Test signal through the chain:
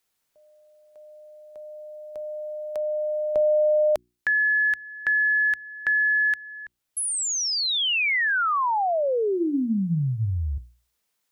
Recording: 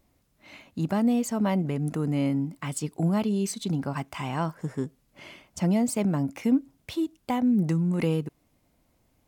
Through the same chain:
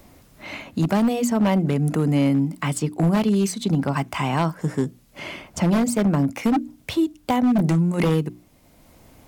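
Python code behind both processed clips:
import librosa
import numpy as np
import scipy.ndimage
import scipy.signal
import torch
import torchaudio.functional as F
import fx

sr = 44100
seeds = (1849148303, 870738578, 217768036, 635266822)

y = fx.hum_notches(x, sr, base_hz=60, count=6)
y = 10.0 ** (-20.0 / 20.0) * (np.abs((y / 10.0 ** (-20.0 / 20.0) + 3.0) % 4.0 - 2.0) - 1.0)
y = fx.band_squash(y, sr, depth_pct=40)
y = y * 10.0 ** (7.0 / 20.0)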